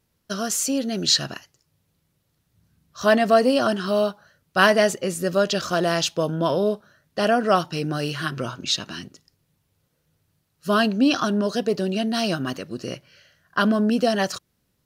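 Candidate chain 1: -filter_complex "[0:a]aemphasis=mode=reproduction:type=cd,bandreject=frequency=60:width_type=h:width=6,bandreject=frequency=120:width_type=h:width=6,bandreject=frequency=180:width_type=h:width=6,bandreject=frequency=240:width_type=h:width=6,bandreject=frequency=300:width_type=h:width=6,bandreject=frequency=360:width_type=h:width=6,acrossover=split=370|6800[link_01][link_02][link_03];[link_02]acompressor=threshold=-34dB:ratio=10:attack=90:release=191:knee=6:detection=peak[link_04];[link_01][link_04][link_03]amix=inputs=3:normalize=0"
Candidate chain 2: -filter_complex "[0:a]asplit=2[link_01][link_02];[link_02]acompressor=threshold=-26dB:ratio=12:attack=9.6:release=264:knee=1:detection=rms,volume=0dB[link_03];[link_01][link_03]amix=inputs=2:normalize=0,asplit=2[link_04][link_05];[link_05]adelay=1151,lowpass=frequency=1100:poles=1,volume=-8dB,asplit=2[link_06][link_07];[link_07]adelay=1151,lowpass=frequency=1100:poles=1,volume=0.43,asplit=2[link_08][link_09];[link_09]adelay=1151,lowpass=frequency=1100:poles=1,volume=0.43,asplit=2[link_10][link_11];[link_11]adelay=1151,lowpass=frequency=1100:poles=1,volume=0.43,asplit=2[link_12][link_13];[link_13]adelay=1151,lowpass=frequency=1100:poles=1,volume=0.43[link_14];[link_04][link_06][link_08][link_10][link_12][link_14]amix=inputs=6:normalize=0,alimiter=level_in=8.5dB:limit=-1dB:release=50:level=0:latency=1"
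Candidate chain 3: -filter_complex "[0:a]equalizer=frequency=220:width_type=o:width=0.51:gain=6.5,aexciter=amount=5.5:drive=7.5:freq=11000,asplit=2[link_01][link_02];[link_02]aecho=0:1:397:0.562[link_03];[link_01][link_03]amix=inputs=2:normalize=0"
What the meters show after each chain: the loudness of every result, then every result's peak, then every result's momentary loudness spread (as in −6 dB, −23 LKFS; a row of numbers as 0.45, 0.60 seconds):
−27.0, −13.0, −19.5 LKFS; −9.5, −1.0, −2.5 dBFS; 12, 14, 12 LU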